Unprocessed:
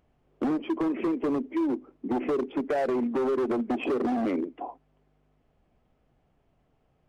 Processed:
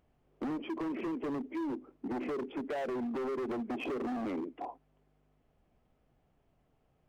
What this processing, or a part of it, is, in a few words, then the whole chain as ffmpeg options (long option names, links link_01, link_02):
limiter into clipper: -af "alimiter=level_in=1.5dB:limit=-24dB:level=0:latency=1:release=42,volume=-1.5dB,asoftclip=type=hard:threshold=-29.5dB,volume=-3.5dB"